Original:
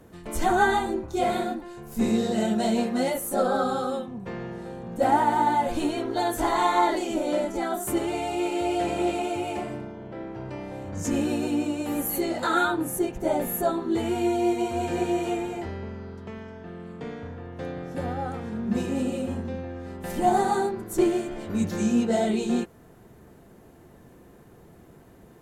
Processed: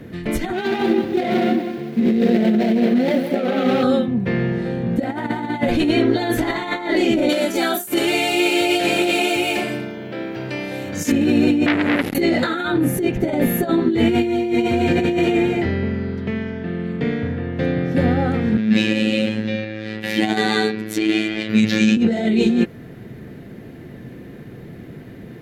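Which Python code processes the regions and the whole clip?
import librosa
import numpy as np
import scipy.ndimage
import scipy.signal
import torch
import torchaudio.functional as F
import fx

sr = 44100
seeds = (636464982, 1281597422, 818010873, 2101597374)

y = fx.chain(x, sr, fx.median_filter(points=25),
    fx.highpass(hz=190.0, slope=12),
    fx.echo_crushed(ms=189, feedback_pct=35, bits=8, wet_db=-11.0), at=(0.53, 3.83))
y = fx.chain(y, sr, fx.riaa(side='recording'),
    fx.notch(hz=2000.0, q=13.0), at=(7.29, 11.12))
y = fx.chain(y, sr, fx.cvsd(bps=64000),
    fx.tilt_shelf(db=5.0, hz=1200.0),
    fx.transformer_sat(knee_hz=1900.0), at=(11.66, 12.15))
y = fx.chain(y, sr, fx.weighting(curve='D'),
    fx.tremolo_shape(shape='saw_up', hz=2.8, depth_pct=35),
    fx.robotise(hz=108.0), at=(18.57, 21.97))
y = fx.over_compress(y, sr, threshold_db=-28.0, ratio=-1.0)
y = fx.graphic_eq_10(y, sr, hz=(125, 250, 500, 1000, 2000, 4000, 8000), db=(10, 8, 4, -6, 11, 6, -8))
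y = y * librosa.db_to_amplitude(4.0)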